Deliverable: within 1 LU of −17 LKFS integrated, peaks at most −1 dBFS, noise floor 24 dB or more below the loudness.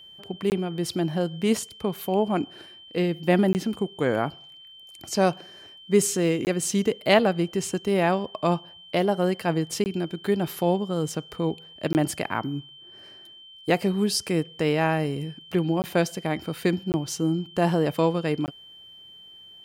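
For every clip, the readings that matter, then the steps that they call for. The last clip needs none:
number of dropouts 8; longest dropout 19 ms; interfering tone 3,100 Hz; level of the tone −45 dBFS; integrated loudness −25.5 LKFS; sample peak −4.5 dBFS; target loudness −17.0 LKFS
→ repair the gap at 0:00.50/0:03.53/0:06.45/0:09.84/0:11.93/0:15.82/0:16.92/0:18.46, 19 ms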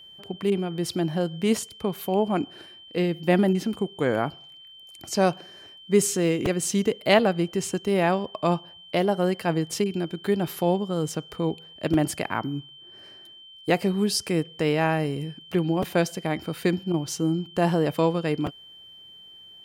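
number of dropouts 0; interfering tone 3,100 Hz; level of the tone −45 dBFS
→ notch filter 3,100 Hz, Q 30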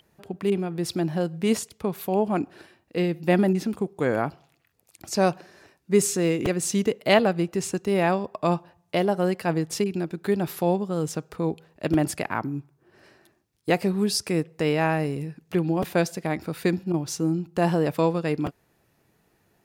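interfering tone none found; integrated loudness −25.5 LKFS; sample peak −5.0 dBFS; target loudness −17.0 LKFS
→ level +8.5 dB
brickwall limiter −1 dBFS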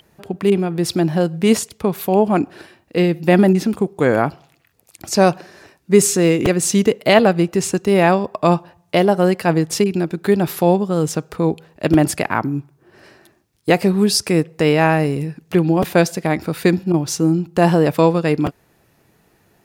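integrated loudness −17.0 LKFS; sample peak −1.0 dBFS; background noise floor −59 dBFS

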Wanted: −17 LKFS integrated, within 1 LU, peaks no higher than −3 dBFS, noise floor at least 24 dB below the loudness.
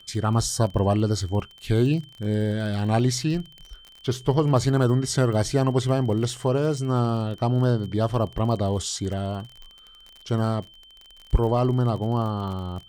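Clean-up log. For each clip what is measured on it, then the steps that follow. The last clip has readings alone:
crackle rate 36 per second; interfering tone 3,100 Hz; level of the tone −48 dBFS; integrated loudness −24.0 LKFS; sample peak −8.0 dBFS; target loudness −17.0 LKFS
→ click removal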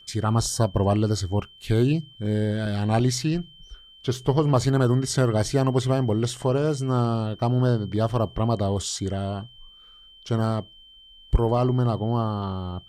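crackle rate 0 per second; interfering tone 3,100 Hz; level of the tone −48 dBFS
→ notch filter 3,100 Hz, Q 30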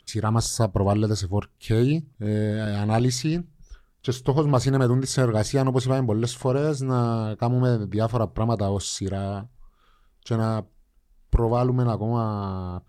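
interfering tone none found; integrated loudness −24.0 LKFS; sample peak −8.5 dBFS; target loudness −17.0 LKFS
→ level +7 dB
brickwall limiter −3 dBFS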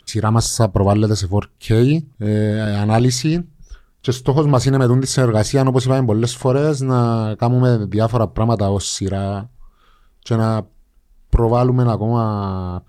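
integrated loudness −17.5 LKFS; sample peak −3.0 dBFS; background noise floor −55 dBFS

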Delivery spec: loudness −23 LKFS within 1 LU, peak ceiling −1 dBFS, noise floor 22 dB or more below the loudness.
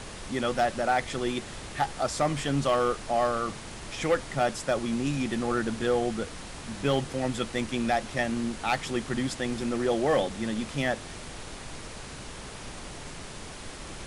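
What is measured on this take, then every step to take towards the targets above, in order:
share of clipped samples 0.3%; peaks flattened at −17.0 dBFS; background noise floor −42 dBFS; target noise floor −51 dBFS; integrated loudness −29.0 LKFS; sample peak −17.0 dBFS; target loudness −23.0 LKFS
→ clipped peaks rebuilt −17 dBFS
noise reduction from a noise print 9 dB
level +6 dB

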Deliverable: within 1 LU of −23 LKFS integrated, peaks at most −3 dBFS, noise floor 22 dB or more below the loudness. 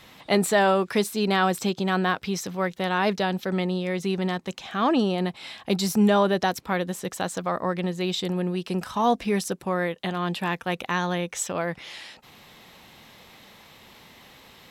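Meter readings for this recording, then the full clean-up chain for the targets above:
integrated loudness −25.5 LKFS; sample peak −9.0 dBFS; target loudness −23.0 LKFS
→ level +2.5 dB

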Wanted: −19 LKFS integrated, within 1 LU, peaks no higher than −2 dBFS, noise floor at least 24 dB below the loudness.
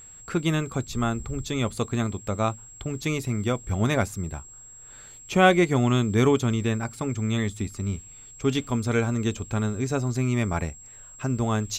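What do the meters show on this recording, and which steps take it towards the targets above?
interfering tone 7,600 Hz; level of the tone −44 dBFS; integrated loudness −26.0 LKFS; sample peak −6.0 dBFS; target loudness −19.0 LKFS
→ notch filter 7,600 Hz, Q 30
level +7 dB
brickwall limiter −2 dBFS

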